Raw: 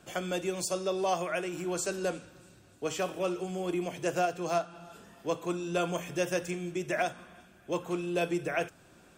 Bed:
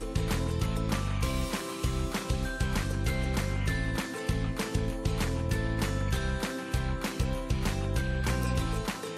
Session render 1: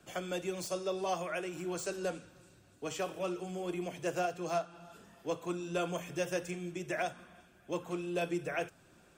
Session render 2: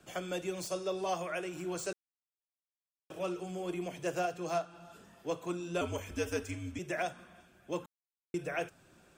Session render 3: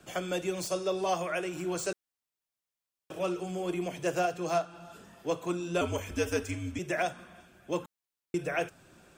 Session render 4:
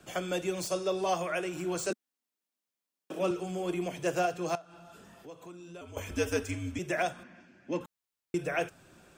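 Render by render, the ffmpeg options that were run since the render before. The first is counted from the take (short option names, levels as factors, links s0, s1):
-filter_complex "[0:a]flanger=delay=0.4:depth=2.2:regen=-71:speed=1.8:shape=triangular,acrossover=split=170|610|5200[s0][s1][s2][s3];[s3]aeval=exprs='0.0106*(abs(mod(val(0)/0.0106+3,4)-2)-1)':c=same[s4];[s0][s1][s2][s4]amix=inputs=4:normalize=0"
-filter_complex "[0:a]asettb=1/sr,asplit=3[s0][s1][s2];[s0]atrim=end=5.814[s3];[s1]atrim=start=5.81:end=6.79,asetpts=PTS-STARTPTS,afade=t=in:d=0.004:c=qsin,afade=t=out:st=0.976:d=0.004:c=qsin,afreqshift=-79[s4];[s2]atrim=start=6.786[s5];[s3][s4]acrossfade=d=0.004:c1=hsin:c2=qsin[s6];[s6][s5]acrossfade=d=0.004:c1=qsin:c2=hsin,asplit=5[s7][s8][s9][s10][s11];[s7]atrim=end=1.93,asetpts=PTS-STARTPTS,afade=t=out:st=1.926:d=0.004:c=hsin[s12];[s8]atrim=start=1.93:end=3.1,asetpts=PTS-STARTPTS,volume=0[s13];[s9]atrim=start=3.1:end=7.86,asetpts=PTS-STARTPTS,afade=t=in:d=0.004:c=hsin,afade=t=out:st=4.756:d=0.004:c=hsin[s14];[s10]atrim=start=7.86:end=8.34,asetpts=PTS-STARTPTS,volume=0[s15];[s11]atrim=start=8.34,asetpts=PTS-STARTPTS,afade=t=in:d=0.004:c=hsin[s16];[s12][s13][s14][s15][s16]concat=n=5:v=0:a=1"
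-af "volume=1.68"
-filter_complex "[0:a]asettb=1/sr,asplit=3[s0][s1][s2];[s0]atrim=end=1.904[s3];[s1]atrim=start=1.9:end=3.31,asetpts=PTS-STARTPTS,afade=t=in:d=0.004:c=qsin,afade=t=out:st=1.406:d=0.004:c=qsin,highpass=f=230:t=q:w=2.6[s4];[s2]atrim=start=3.306[s5];[s3][s4]acrossfade=d=0.004:c1=hsin:c2=qsin[s6];[s6][s5]acrossfade=d=0.004:c1=qsin:c2=hsin,asettb=1/sr,asplit=3[s7][s8][s9];[s7]atrim=end=4.554[s10];[s8]atrim=start=4.55:end=5.97,asetpts=PTS-STARTPTS,afade=t=in:d=0.004:c=qsin,afade=t=out:st=1.416:d=0.004:c=qsin,acompressor=threshold=0.00355:ratio=3:attack=3.2:release=140:knee=1:detection=peak[s11];[s9]atrim=start=5.966[s12];[s10][s11]acrossfade=d=0.004:c1=hsin:c2=qsin[s13];[s13][s12]acrossfade=d=0.004:c1=qsin:c2=hsin,asettb=1/sr,asplit=3[s14][s15][s16];[s14]atrim=end=7.234[s17];[s15]atrim=start=7.23:end=7.81,asetpts=PTS-STARTPTS,afade=t=in:d=0.004:c=qsin,afade=t=out:st=0.576:d=0.004:c=qsin,highpass=140,equalizer=f=260:t=q:w=4:g=10,equalizer=f=430:t=q:w=4:g=-6,equalizer=f=720:t=q:w=4:g=-6,equalizer=f=1200:t=q:w=4:g=-8,equalizer=f=1900:t=q:w=4:g=4,equalizer=f=3500:t=q:w=4:g=-10,lowpass=f=5700:w=0.5412,lowpass=f=5700:w=1.3066[s18];[s16]atrim=start=7.806[s19];[s17][s18]acrossfade=d=0.004:c1=hsin:c2=qsin[s20];[s20][s19]acrossfade=d=0.004:c1=qsin:c2=hsin"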